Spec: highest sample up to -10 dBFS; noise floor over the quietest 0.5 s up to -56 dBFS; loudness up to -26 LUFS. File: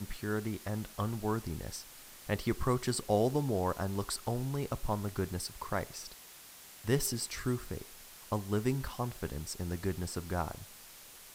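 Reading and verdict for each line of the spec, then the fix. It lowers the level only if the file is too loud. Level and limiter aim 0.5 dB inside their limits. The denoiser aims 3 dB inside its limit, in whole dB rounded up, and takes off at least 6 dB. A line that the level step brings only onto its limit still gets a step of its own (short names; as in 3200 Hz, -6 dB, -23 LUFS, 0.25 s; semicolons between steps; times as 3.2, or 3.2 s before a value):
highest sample -15.5 dBFS: OK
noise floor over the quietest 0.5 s -53 dBFS: fail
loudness -35.5 LUFS: OK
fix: denoiser 6 dB, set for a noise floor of -53 dBFS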